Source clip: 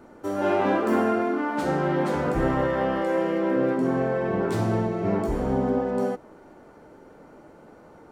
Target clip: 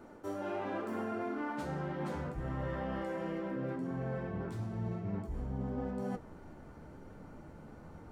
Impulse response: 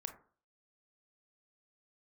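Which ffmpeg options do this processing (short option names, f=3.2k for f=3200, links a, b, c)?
-af "asubboost=boost=5:cutoff=170,areverse,acompressor=threshold=-30dB:ratio=10,areverse,flanger=delay=9:depth=5.7:regen=-59:speed=0.98:shape=triangular"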